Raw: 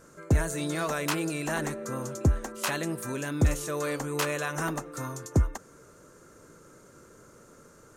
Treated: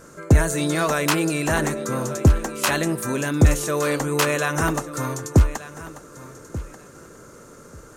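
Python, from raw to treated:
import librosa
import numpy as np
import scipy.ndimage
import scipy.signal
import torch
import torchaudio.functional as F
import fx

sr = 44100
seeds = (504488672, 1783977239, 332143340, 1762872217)

y = fx.echo_feedback(x, sr, ms=1187, feedback_pct=18, wet_db=-16)
y = y * librosa.db_to_amplitude(8.5)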